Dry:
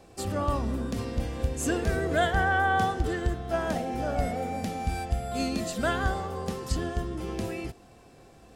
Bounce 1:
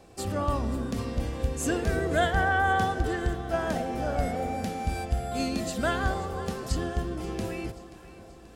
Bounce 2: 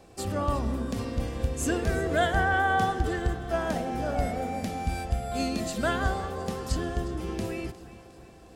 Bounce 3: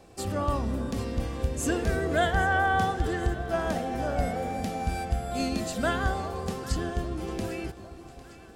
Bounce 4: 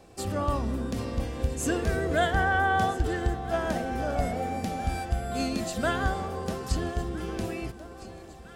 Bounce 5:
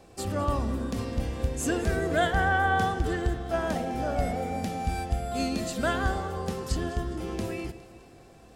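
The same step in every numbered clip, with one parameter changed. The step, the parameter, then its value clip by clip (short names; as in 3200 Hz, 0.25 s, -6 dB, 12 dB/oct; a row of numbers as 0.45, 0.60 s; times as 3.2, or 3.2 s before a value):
echo with dull and thin repeats by turns, time: 0.266, 0.179, 0.401, 0.655, 0.103 s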